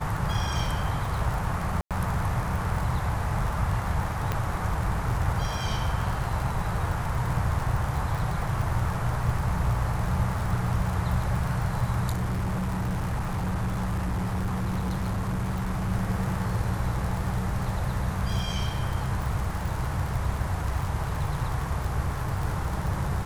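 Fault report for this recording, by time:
surface crackle 60 per second −30 dBFS
0:01.81–0:01.91: drop-out 97 ms
0:04.32: click −13 dBFS
0:12.11–0:15.92: clipping −24 dBFS

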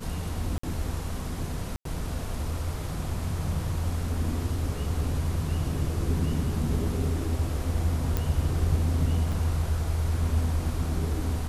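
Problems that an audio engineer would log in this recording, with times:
0:00.58–0:00.63: drop-out 54 ms
0:01.76–0:01.85: drop-out 93 ms
0:08.17: click
0:09.32: drop-out 4.7 ms

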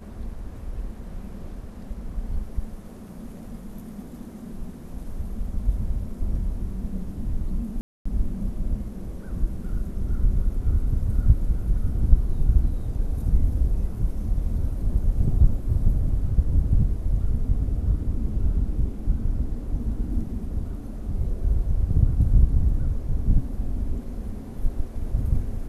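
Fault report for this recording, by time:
0:07.81–0:08.05: drop-out 245 ms

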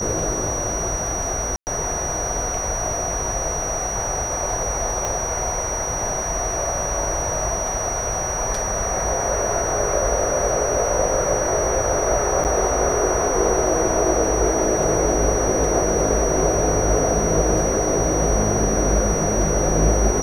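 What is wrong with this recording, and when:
whistle 5,800 Hz −25 dBFS
0:01.56–0:01.67: drop-out 109 ms
0:05.05: click −10 dBFS
0:12.44–0:12.45: drop-out 9 ms

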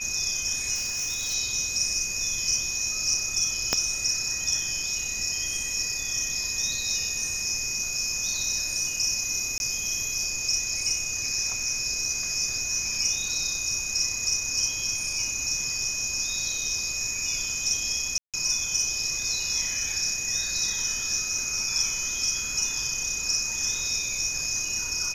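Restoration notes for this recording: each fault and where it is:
whistle 2,500 Hz −34 dBFS
0:00.74–0:01.35: clipping −25.5 dBFS
0:03.73: click −7 dBFS
0:09.58–0:09.60: drop-out 21 ms
0:18.18–0:18.34: drop-out 157 ms

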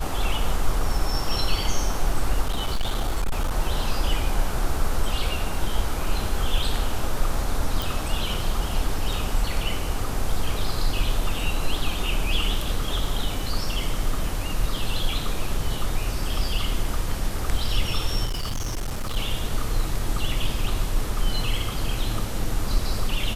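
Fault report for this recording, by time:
0:02.46–0:03.56: clipping −19 dBFS
0:07.82: click
0:18.25–0:19.17: clipping −23.5 dBFS

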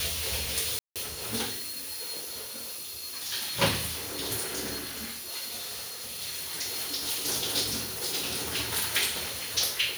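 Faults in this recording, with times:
0:00.79–0:00.96: drop-out 167 ms
0:05.56–0:06.04: clipping −34 dBFS

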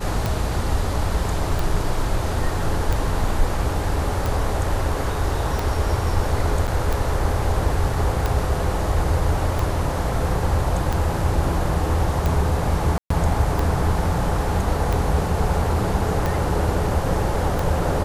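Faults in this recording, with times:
scratch tick 45 rpm
0:06.67–0:06.68: drop-out 7.6 ms
0:12.98–0:13.10: drop-out 124 ms

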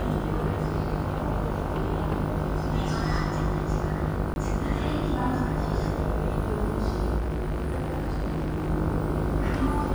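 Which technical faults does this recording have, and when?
mains buzz 50 Hz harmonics 31 −31 dBFS
0:04.34–0:04.36: drop-out 21 ms
0:07.17–0:08.71: clipping −25 dBFS

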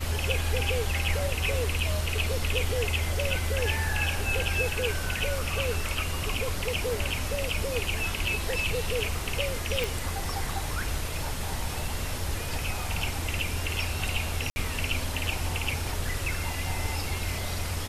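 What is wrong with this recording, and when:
0:09.84: click
0:14.50–0:14.56: drop-out 60 ms

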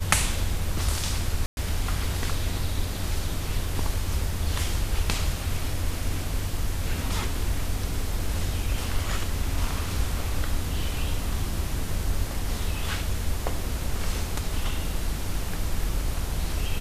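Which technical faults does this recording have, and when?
0:01.46–0:01.57: drop-out 111 ms

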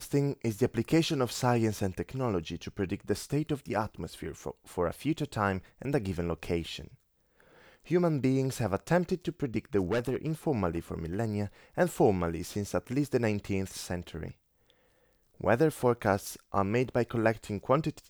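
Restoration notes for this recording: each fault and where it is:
0:09.91–0:10.32: clipping −24.5 dBFS

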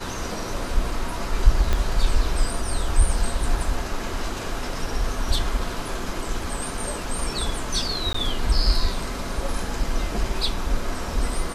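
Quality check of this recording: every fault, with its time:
0:01.73: click −9 dBFS
0:08.13–0:08.14: drop-out 14 ms

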